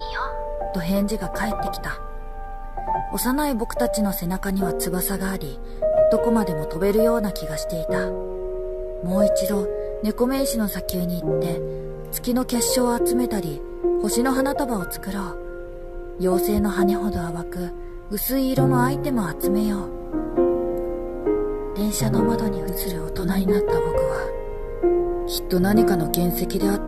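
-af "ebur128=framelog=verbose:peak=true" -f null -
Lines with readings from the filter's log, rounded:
Integrated loudness:
  I:         -23.1 LUFS
  Threshold: -33.3 LUFS
Loudness range:
  LRA:         3.1 LU
  Threshold: -43.3 LUFS
  LRA low:   -25.1 LUFS
  LRA high:  -22.0 LUFS
True peak:
  Peak:       -1.7 dBFS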